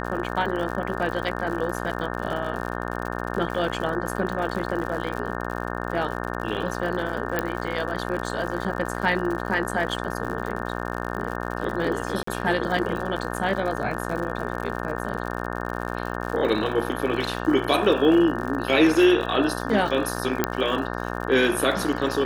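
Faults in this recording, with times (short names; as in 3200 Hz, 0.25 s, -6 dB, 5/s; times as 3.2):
buzz 60 Hz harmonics 30 -30 dBFS
crackle 81/s -31 dBFS
7.39 pop -10 dBFS
12.23–12.27 gap 44 ms
20.44 pop -5 dBFS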